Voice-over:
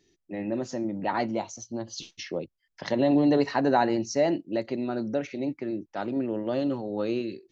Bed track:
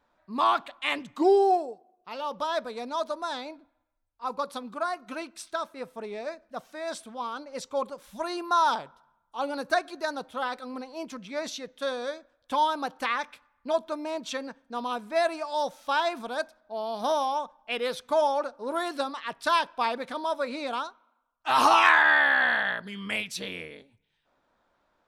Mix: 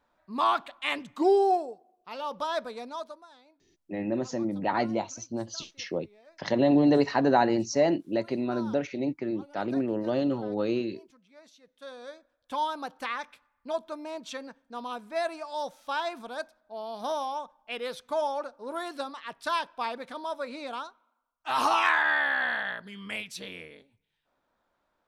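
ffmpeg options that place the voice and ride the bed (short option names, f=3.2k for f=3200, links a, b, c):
-filter_complex "[0:a]adelay=3600,volume=0.5dB[a];[1:a]volume=15dB,afade=t=out:st=2.67:d=0.59:silence=0.1,afade=t=in:st=11.59:d=1:silence=0.149624[b];[a][b]amix=inputs=2:normalize=0"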